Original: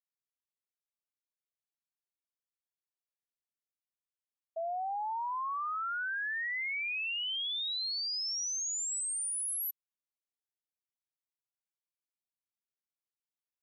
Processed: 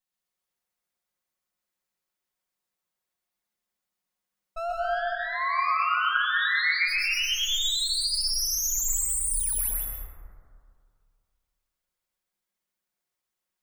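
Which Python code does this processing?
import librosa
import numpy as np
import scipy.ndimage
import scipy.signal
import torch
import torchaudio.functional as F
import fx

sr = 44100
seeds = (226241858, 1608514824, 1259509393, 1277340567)

y = fx.lower_of_two(x, sr, delay_ms=5.5)
y = fx.brickwall_bandpass(y, sr, low_hz=1000.0, high_hz=5000.0, at=(4.72, 6.87), fade=0.02)
y = y + 10.0 ** (-4.0 / 20.0) * np.pad(y, (int(130 * sr / 1000.0), 0))[:len(y)]
y = fx.rev_plate(y, sr, seeds[0], rt60_s=2.2, hf_ratio=0.25, predelay_ms=110, drr_db=-2.0)
y = y * librosa.db_to_amplitude(7.0)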